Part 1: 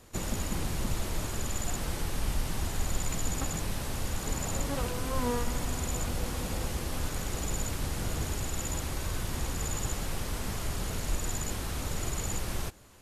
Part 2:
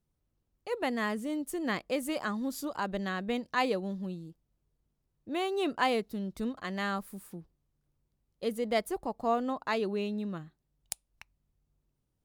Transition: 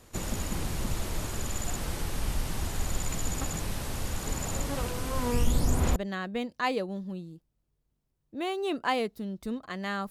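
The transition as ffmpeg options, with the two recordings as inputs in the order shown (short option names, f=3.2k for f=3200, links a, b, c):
-filter_complex "[0:a]asplit=3[a][b][c];[a]afade=t=out:st=5.31:d=0.02[d];[b]aphaser=in_gain=1:out_gain=1:delay=2.1:decay=0.61:speed=0.17:type=triangular,afade=t=in:st=5.31:d=0.02,afade=t=out:st=5.96:d=0.02[e];[c]afade=t=in:st=5.96:d=0.02[f];[d][e][f]amix=inputs=3:normalize=0,apad=whole_dur=10.1,atrim=end=10.1,atrim=end=5.962[g];[1:a]atrim=start=2.898:end=7.04[h];[g][h]acrossfade=d=0.004:c1=hsin:c2=hsin"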